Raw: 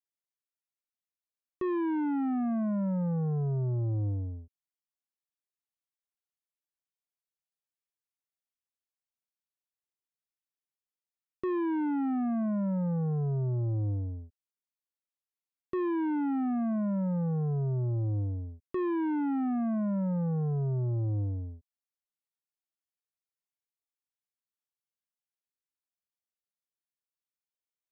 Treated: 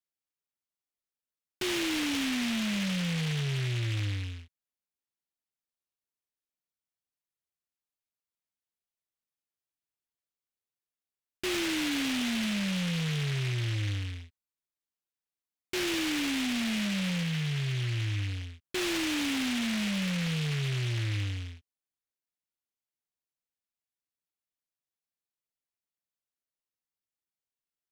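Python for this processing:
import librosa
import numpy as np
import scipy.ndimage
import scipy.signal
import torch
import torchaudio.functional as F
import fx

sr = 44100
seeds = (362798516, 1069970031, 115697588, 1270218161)

y = fx.peak_eq(x, sr, hz=490.0, db=-8.5, octaves=0.62, at=(17.23, 18.29))
y = fx.noise_mod_delay(y, sr, seeds[0], noise_hz=2500.0, depth_ms=0.35)
y = F.gain(torch.from_numpy(y), -1.0).numpy()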